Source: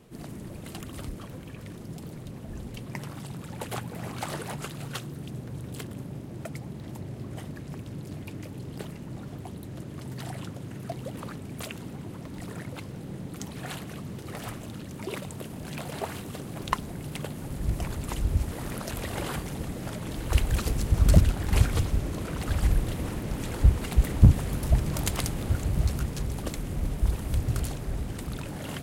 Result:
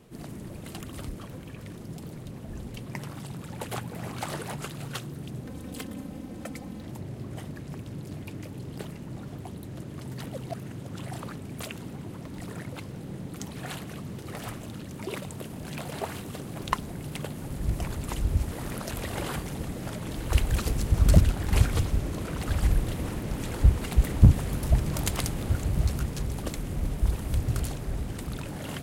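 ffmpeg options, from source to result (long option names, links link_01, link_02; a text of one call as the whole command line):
ffmpeg -i in.wav -filter_complex "[0:a]asettb=1/sr,asplit=3[link_01][link_02][link_03];[link_01]atrim=end=5.454[link_04];[link_02]atrim=start=5.45:end=6.83,asetpts=PTS-STARTPTS,afade=type=in:duration=0.004:curve=qsin,afade=type=out:start_time=1.376:duration=0.004:curve=qsin,aecho=1:1:3.9:0.72,atrim=end_sample=60858[link_05];[link_03]atrim=start=6.826[link_06];[link_04][link_05]acrossfade=duration=0.004:curve1=hsin:curve2=qsin[link_07];[link_07][link_06]acrossfade=duration=0.004:curve1=qsin:curve2=hsin,asplit=3[link_08][link_09][link_10];[link_08]atrim=end=10.242[link_11];[link_09]atrim=start=10.238:end=11.192,asetpts=PTS-STARTPTS,areverse[link_12];[link_10]atrim=start=11.188[link_13];[link_11][link_12]acrossfade=duration=0.004:curve1=hsin:curve2=hsin[link_14];[link_14][link_13]acrossfade=duration=0.004:curve1=hsin:curve2=hsin" out.wav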